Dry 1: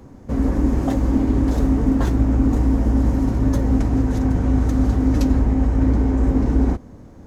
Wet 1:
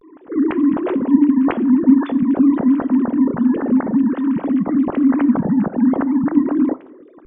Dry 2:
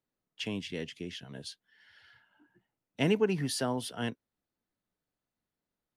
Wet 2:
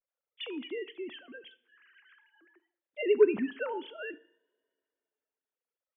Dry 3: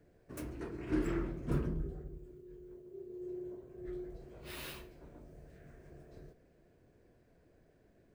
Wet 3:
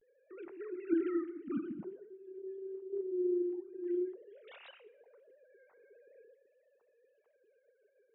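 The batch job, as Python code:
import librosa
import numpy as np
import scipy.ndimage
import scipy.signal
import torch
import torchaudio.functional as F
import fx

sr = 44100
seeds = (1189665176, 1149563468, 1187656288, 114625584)

y = fx.sine_speech(x, sr)
y = fx.rev_double_slope(y, sr, seeds[0], early_s=0.62, late_s=2.6, knee_db=-27, drr_db=15.0)
y = fx.vibrato(y, sr, rate_hz=0.48, depth_cents=70.0)
y = y * librosa.db_to_amplitude(1.5)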